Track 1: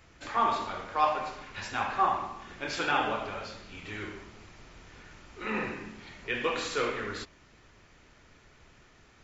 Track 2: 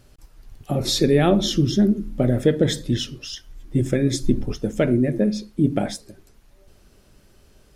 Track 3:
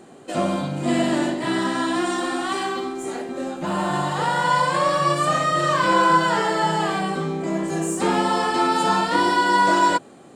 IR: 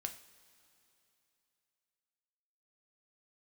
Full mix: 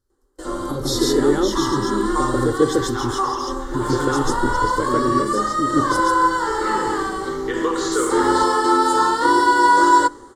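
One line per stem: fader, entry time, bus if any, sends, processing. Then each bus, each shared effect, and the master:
-3.5 dB, 1.20 s, bus A, no send, no echo send, band-stop 1.6 kHz; level rider gain up to 13 dB
+1.0 dB, 0.00 s, bus A, no send, echo send -4 dB, none
+1.0 dB, 0.10 s, no bus, send -13 dB, no echo send, hum notches 60/120/180/240/300 Hz; auto duck -7 dB, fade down 0.40 s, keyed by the second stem
bus A: 0.0 dB, compression 2.5:1, threshold -24 dBFS, peak gain reduction 9 dB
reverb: on, pre-delay 3 ms
echo: delay 141 ms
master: level rider gain up to 6 dB; static phaser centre 670 Hz, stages 6; gate with hold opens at -32 dBFS

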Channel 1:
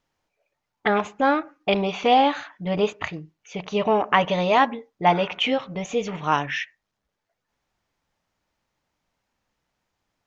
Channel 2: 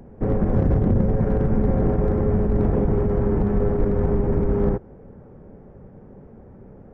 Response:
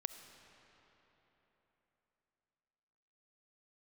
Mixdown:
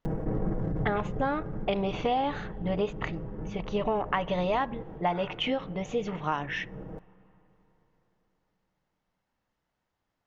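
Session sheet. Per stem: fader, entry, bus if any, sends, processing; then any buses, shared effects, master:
-4.0 dB, 0.00 s, send -19.5 dB, treble shelf 4.6 kHz -11 dB
-6.5 dB, 0.05 s, send -18 dB, square tremolo 2.7 Hz, depth 65%, duty 30%; comb 6.3 ms, depth 75%; level flattener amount 70%; auto duck -19 dB, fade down 1.90 s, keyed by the first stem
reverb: on, RT60 3.9 s, pre-delay 25 ms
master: band-stop 2.4 kHz, Q 16; compression 5:1, threshold -24 dBFS, peak gain reduction 8 dB

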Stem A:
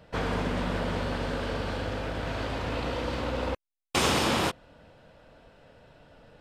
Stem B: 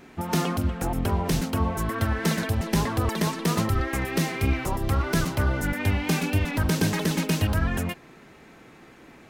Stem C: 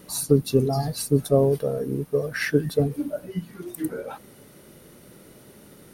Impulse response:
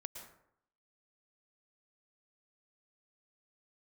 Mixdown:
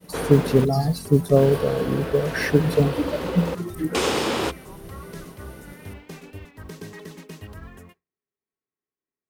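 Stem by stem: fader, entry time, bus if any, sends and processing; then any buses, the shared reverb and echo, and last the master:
-4.5 dB, 0.00 s, muted 0.65–1.36 s, no send, FFT filter 170 Hz 0 dB, 420 Hz +12 dB, 630 Hz +5 dB
-17.0 dB, 0.00 s, send -15 dB, small resonant body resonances 410/1100/1900 Hz, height 11 dB, ringing for 65 ms
+2.0 dB, 0.00 s, no send, de-esser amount 65%; peaking EQ 170 Hz +11 dB 0.23 oct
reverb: on, RT60 0.70 s, pre-delay 103 ms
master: expander -38 dBFS; modulation noise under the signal 33 dB

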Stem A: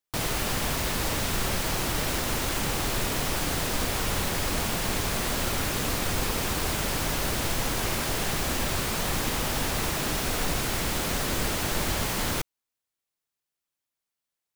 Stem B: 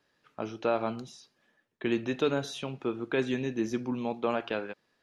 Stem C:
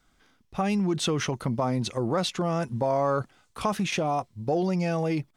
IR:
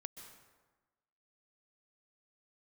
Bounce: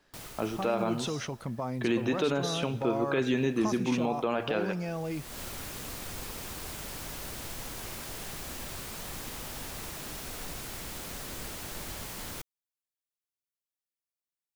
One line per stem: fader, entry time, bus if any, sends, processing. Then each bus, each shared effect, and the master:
-13.5 dB, 0.00 s, no send, treble shelf 5.6 kHz +5 dB; auto duck -23 dB, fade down 1.25 s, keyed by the second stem
+3.0 dB, 0.00 s, send -6.5 dB, none
-8.0 dB, 0.00 s, no send, none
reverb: on, RT60 1.2 s, pre-delay 118 ms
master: peak limiter -18 dBFS, peak gain reduction 8.5 dB

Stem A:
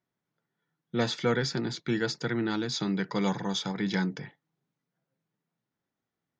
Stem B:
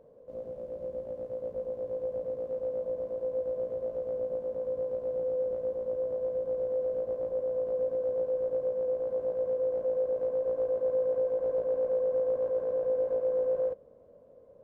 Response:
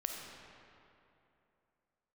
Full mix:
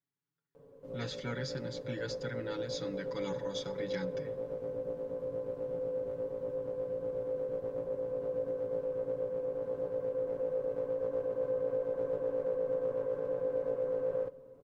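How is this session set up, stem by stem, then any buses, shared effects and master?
-13.5 dB, 0.00 s, send -17.5 dB, none
0.0 dB, 0.55 s, send -19.5 dB, none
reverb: on, RT60 2.8 s, pre-delay 10 ms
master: peaking EQ 640 Hz -14.5 dB 0.43 oct; comb 7.1 ms, depth 95%

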